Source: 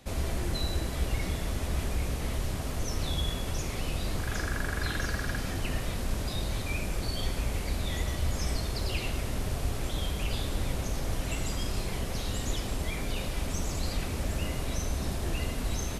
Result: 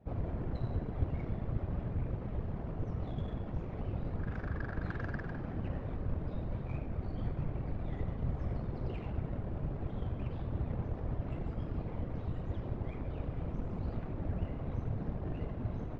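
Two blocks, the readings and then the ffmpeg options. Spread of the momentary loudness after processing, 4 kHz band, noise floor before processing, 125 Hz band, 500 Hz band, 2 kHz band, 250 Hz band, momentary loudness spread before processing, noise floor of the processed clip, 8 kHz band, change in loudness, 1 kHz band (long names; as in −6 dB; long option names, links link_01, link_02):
2 LU, below −25 dB, −35 dBFS, −3.0 dB, −6.0 dB, −13.5 dB, −3.5 dB, 2 LU, −42 dBFS, below −40 dB, −6.0 dB, −8.0 dB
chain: -af "afftfilt=real='hypot(re,im)*cos(2*PI*random(0))':imag='hypot(re,im)*sin(2*PI*random(1))':win_size=512:overlap=0.75,adynamicsmooth=sensitivity=2.5:basefreq=960,aemphasis=mode=reproduction:type=50fm,volume=1dB"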